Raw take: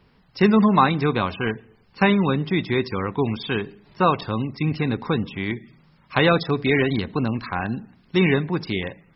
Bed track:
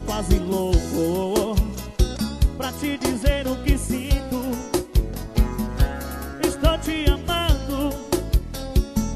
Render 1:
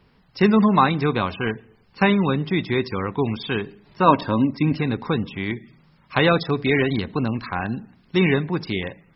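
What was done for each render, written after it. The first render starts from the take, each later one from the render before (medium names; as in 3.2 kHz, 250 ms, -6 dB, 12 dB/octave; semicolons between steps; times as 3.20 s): 4.06–4.79 s: small resonant body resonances 270/580/950/1600 Hz, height 13 dB -> 9 dB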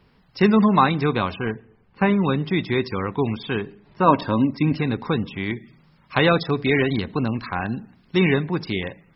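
1.38–2.24 s: distance through air 430 m; 3.34–4.13 s: low-pass 3.3 kHz -> 1.9 kHz 6 dB/octave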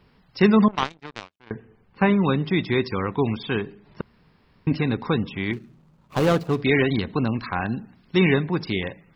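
0.68–1.51 s: power-law waveshaper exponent 3; 4.01–4.67 s: room tone; 5.53–6.62 s: median filter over 25 samples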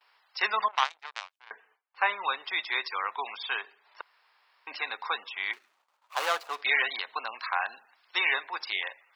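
high-pass 790 Hz 24 dB/octave; gate with hold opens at -58 dBFS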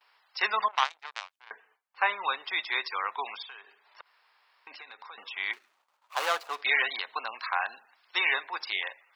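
3.42–5.18 s: compression 5:1, threshold -44 dBFS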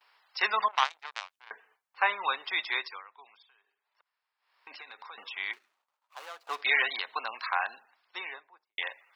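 2.71–4.71 s: dip -20 dB, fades 0.33 s; 5.26–6.47 s: fade out quadratic, to -17.5 dB; 7.54–8.78 s: studio fade out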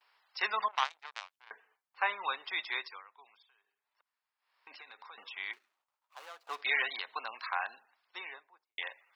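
trim -5 dB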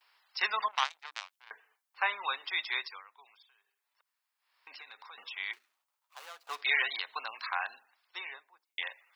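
tilt EQ +2 dB/octave; hum notches 60/120/180/240/300 Hz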